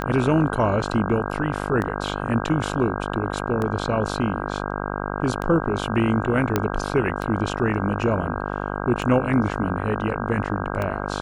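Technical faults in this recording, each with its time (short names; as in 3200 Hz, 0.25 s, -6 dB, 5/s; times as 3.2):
buzz 50 Hz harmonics 32 -28 dBFS
tick 33 1/3 rpm -14 dBFS
6.56 pop -6 dBFS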